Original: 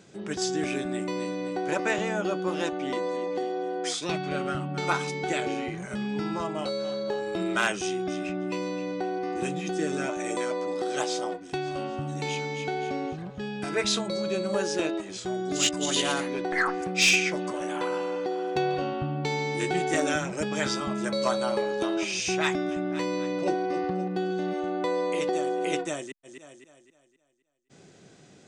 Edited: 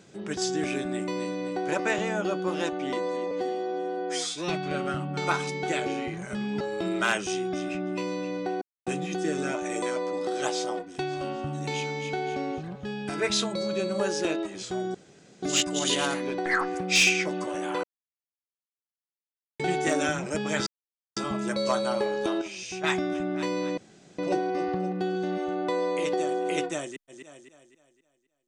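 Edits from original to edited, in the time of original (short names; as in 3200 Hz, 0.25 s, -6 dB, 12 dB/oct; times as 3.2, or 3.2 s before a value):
3.31–4.1 stretch 1.5×
6.21–7.15 cut
9.16–9.41 mute
15.49 insert room tone 0.48 s
17.9–19.66 mute
20.73 insert silence 0.50 s
21.98–22.4 gain -8.5 dB
23.34 insert room tone 0.41 s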